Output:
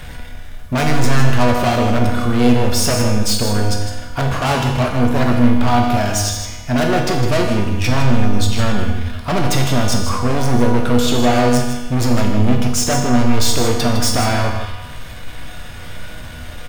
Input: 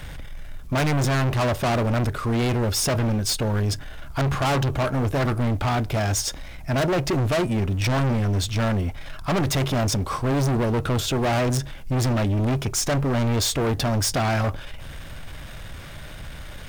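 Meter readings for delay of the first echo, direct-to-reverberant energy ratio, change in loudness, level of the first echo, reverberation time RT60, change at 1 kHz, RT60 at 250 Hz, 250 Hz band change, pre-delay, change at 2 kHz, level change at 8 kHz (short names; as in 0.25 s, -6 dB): 0.157 s, 0.0 dB, +6.5 dB, -9.0 dB, 1.2 s, +7.5 dB, 1.2 s, +8.5 dB, 4 ms, +6.5 dB, +6.0 dB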